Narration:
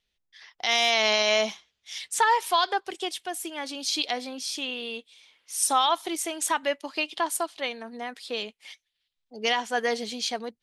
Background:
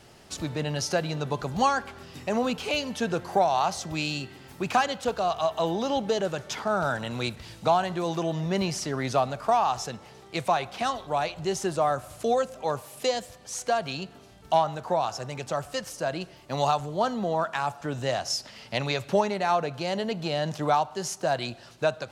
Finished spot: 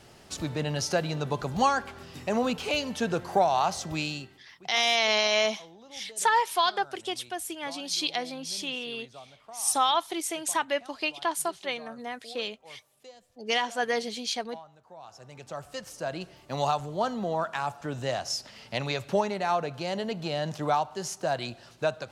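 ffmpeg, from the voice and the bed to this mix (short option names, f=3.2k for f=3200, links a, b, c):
-filter_complex "[0:a]adelay=4050,volume=-1.5dB[a];[1:a]volume=20.5dB,afade=t=out:st=3.95:d=0.52:silence=0.0707946,afade=t=in:st=14.95:d=1.35:silence=0.0891251[b];[a][b]amix=inputs=2:normalize=0"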